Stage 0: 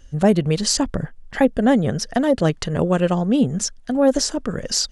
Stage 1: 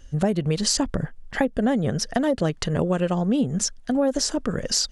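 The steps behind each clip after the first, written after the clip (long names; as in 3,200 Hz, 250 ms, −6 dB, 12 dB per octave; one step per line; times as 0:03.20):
downward compressor, threshold −18 dBFS, peak gain reduction 8.5 dB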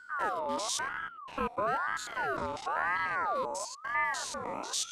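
spectrum averaged block by block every 100 ms
ring modulator whose carrier an LFO sweeps 1,100 Hz, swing 35%, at 1 Hz
level −5 dB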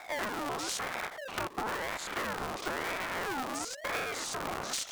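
sub-harmonics by changed cycles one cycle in 2, inverted
downward compressor, threshold −36 dBFS, peak gain reduction 10 dB
level +4.5 dB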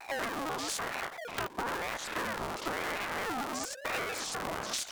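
pitch modulation by a square or saw wave square 4.4 Hz, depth 160 cents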